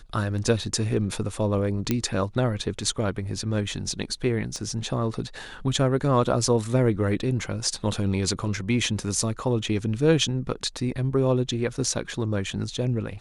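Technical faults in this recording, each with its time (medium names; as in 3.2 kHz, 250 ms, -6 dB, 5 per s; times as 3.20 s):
1.91 s: pop -9 dBFS
4.56 s: pop -22 dBFS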